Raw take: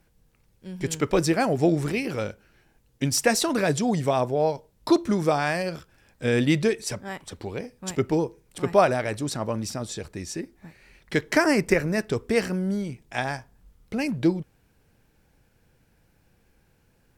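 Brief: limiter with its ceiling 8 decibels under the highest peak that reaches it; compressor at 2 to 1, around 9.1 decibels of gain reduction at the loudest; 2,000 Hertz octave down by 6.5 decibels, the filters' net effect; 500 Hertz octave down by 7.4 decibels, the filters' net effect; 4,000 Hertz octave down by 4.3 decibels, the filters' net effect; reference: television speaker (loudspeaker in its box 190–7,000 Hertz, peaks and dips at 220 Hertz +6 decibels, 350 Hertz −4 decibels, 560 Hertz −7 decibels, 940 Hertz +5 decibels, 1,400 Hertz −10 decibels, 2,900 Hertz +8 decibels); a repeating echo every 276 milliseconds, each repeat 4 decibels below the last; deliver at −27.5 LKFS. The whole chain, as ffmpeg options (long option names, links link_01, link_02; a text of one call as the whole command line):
ffmpeg -i in.wav -af "equalizer=frequency=500:width_type=o:gain=-5,equalizer=frequency=2000:width_type=o:gain=-4.5,equalizer=frequency=4000:width_type=o:gain=-7.5,acompressor=threshold=-34dB:ratio=2,alimiter=level_in=1dB:limit=-24dB:level=0:latency=1,volume=-1dB,highpass=frequency=190:width=0.5412,highpass=frequency=190:width=1.3066,equalizer=frequency=220:width_type=q:width=4:gain=6,equalizer=frequency=350:width_type=q:width=4:gain=-4,equalizer=frequency=560:width_type=q:width=4:gain=-7,equalizer=frequency=940:width_type=q:width=4:gain=5,equalizer=frequency=1400:width_type=q:width=4:gain=-10,equalizer=frequency=2900:width_type=q:width=4:gain=8,lowpass=frequency=7000:width=0.5412,lowpass=frequency=7000:width=1.3066,aecho=1:1:276|552|828|1104|1380|1656|1932|2208|2484:0.631|0.398|0.25|0.158|0.0994|0.0626|0.0394|0.0249|0.0157,volume=8dB" out.wav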